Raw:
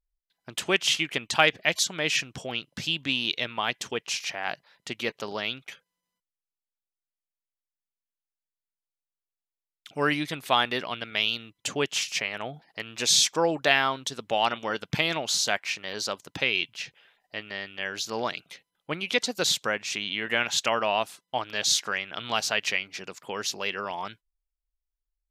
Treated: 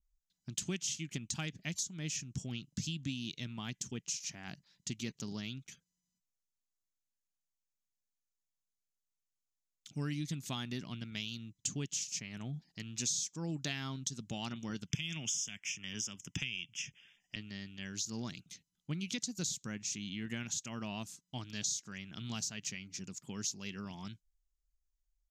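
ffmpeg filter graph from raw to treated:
-filter_complex "[0:a]asettb=1/sr,asplit=3[a][b][c];[a]atrim=end=14.874[d];[b]atrim=start=14.87:end=17.36,asetpts=PTS-STARTPTS,afade=t=in:d=0.004:c=qsin,afade=t=out:st=2.486:d=0.004:c=qsin,equalizer=f=2.6k:w=0.79:g=14.5,acrossover=split=230|3000[e][f][g];[f]acompressor=threshold=-27dB:ratio=2.5:attack=3.2:release=140:knee=2.83:detection=peak[h];[e][h][g]amix=inputs=3:normalize=0,asuperstop=centerf=4200:order=8:qfactor=2.7[i];[c]atrim=start=17.356[j];[d][i]acrossfade=d=0.004:c1=hsin:c2=qsin[k];[k][j]acrossfade=d=0.004:c1=qsin:c2=hsin,firequalizer=gain_entry='entry(180,0);entry(510,-26);entry(6700,2);entry(9500,-13)':delay=0.05:min_phase=1,acompressor=threshold=-37dB:ratio=6,adynamicequalizer=threshold=0.00126:dfrequency=3900:dqfactor=0.91:tfrequency=3900:tqfactor=0.91:attack=5:release=100:ratio=0.375:range=3:mode=cutabove:tftype=bell,volume=4dB"

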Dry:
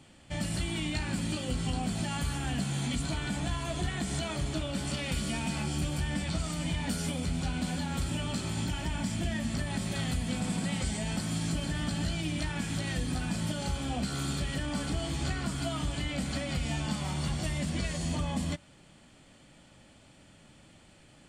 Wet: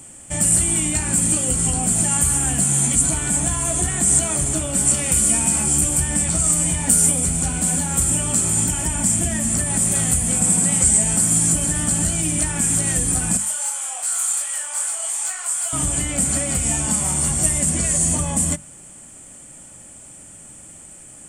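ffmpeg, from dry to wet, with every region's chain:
-filter_complex "[0:a]asettb=1/sr,asplit=3[a][b][c];[a]atrim=end=13.374[d];[b]atrim=start=13.37:end=15.73,asetpts=PTS-STARTPTS,afade=t=in:d=0.004:c=qsin,afade=t=out:st=2.356:d=0.004:c=qsin,highpass=f=750:w=0.5412,highpass=f=750:w=1.3066,asoftclip=type=hard:threshold=-31.5dB,flanger=delay=20:depth=5.1:speed=2.6[e];[c]atrim=start=15.726[f];[d][e]acrossfade=d=0.004:c1=hsin:c2=qsin[g];[g][f]acrossfade=d=0.004:c1=qsin:c2=hsin,highshelf=f=5.9k:t=q:w=3:g=13,bandreject=f=50:t=h:w=6,bandreject=f=100:t=h:w=6,bandreject=f=150:t=h:w=6,bandreject=f=200:t=h:w=6,bandreject=f=250:t=h:w=6,volume=8.5dB"

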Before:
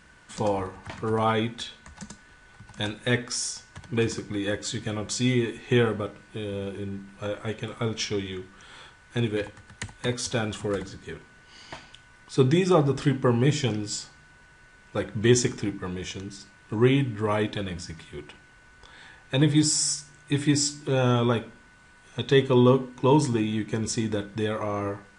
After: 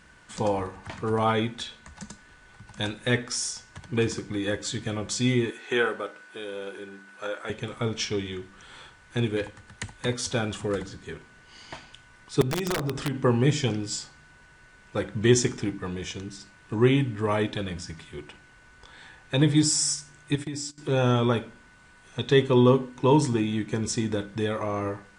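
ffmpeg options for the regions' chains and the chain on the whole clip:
-filter_complex "[0:a]asettb=1/sr,asplit=3[a][b][c];[a]atrim=end=5.504[d];[b]atrim=start=5.5:end=7.5,asetpts=PTS-STARTPTS,afade=t=in:d=0.004:c=qsin,afade=t=out:st=1.996:d=0.004:c=qsin,highpass=400,equalizer=f=1.5k:t=o:w=0.27:g=7.5[e];[c]atrim=start=7.496[f];[d][e]acrossfade=d=0.004:c1=hsin:c2=qsin[g];[g][f]acrossfade=d=0.004:c1=qsin:c2=hsin,asettb=1/sr,asplit=3[h][i][j];[h]atrim=end=12.414[k];[i]atrim=start=12.41:end=13.24,asetpts=PTS-STARTPTS,afade=t=in:d=0.004:c=qsin,afade=t=out:st=0.826:d=0.004:c=qsin,acompressor=threshold=-25dB:ratio=4:attack=3.2:release=140:knee=1:detection=peak,aeval=exprs='(mod(10.6*val(0)+1,2)-1)/10.6':c=same[l];[j]atrim=start=13.236[m];[k][l]acrossfade=d=0.004:c1=hsin:c2=qsin[n];[n][m]acrossfade=d=0.004:c1=qsin:c2=hsin,asettb=1/sr,asplit=3[o][p][q];[o]atrim=end=20.354[r];[p]atrim=start=20.35:end=20.78,asetpts=PTS-STARTPTS,afade=t=in:d=0.004:c=qsin,afade=t=out:st=0.426:d=0.004:c=qsin,agate=range=-19dB:threshold=-32dB:ratio=16:release=100:detection=peak,acompressor=threshold=-29dB:ratio=12:attack=3.2:release=140:knee=1:detection=peak[s];[q]atrim=start=20.776[t];[r][s]acrossfade=d=0.004:c1=hsin:c2=qsin[u];[u][t]acrossfade=d=0.004:c1=qsin:c2=hsin"

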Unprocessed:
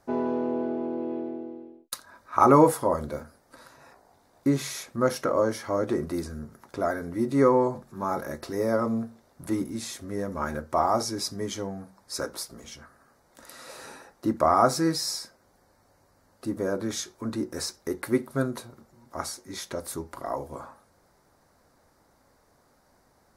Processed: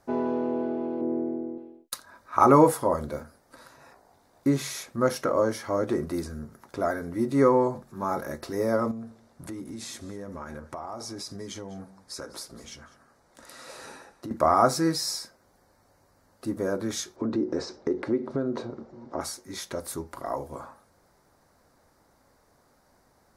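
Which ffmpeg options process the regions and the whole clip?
-filter_complex "[0:a]asettb=1/sr,asplit=3[a][b][c];[a]atrim=end=1.014[d];[b]atrim=start=1.01:end=1.58,asetpts=PTS-STARTPTS,afade=t=in:d=0.004:c=qsin,afade=t=out:st=0.566:d=0.004:c=qsin,asuperstop=centerf=3900:order=12:qfactor=0.97,tiltshelf=f=730:g=6[e];[c]atrim=start=1.576[f];[d][e]acrossfade=d=0.004:c1=hsin:c2=qsin[g];[g][f]acrossfade=d=0.004:c1=qsin:c2=hsin,asettb=1/sr,asplit=3[h][i][j];[h]atrim=end=8.914[k];[i]atrim=start=8.91:end=14.31,asetpts=PTS-STARTPTS,afade=t=in:d=0.004:c=qsin,afade=t=out:st=5.396:d=0.004:c=qsin,lowpass=11k,acompressor=threshold=-34dB:ratio=6:attack=3.2:release=140:knee=1:detection=peak,aecho=1:1:199:0.112,atrim=end_sample=238140[l];[j]atrim=start=14.306[m];[k][l]acrossfade=d=0.004:c1=hsin:c2=qsin[n];[n][m]acrossfade=d=0.004:c1=qsin:c2=hsin,asettb=1/sr,asplit=3[o][p][q];[o]atrim=end=17.164[r];[p]atrim=start=17.16:end=19.21,asetpts=PTS-STARTPTS,afade=t=in:d=0.004:c=qsin,afade=t=out:st=2.046:d=0.004:c=qsin,lowpass=f=5.8k:w=0.5412,lowpass=f=5.8k:w=1.3066,acompressor=threshold=-36dB:ratio=5:attack=3.2:release=140:knee=1:detection=peak,equalizer=f=370:t=o:w=2.5:g=14.5[s];[q]atrim=start=19.206[t];[r][s]acrossfade=d=0.004:c1=hsin:c2=qsin[u];[u][t]acrossfade=d=0.004:c1=qsin:c2=hsin"

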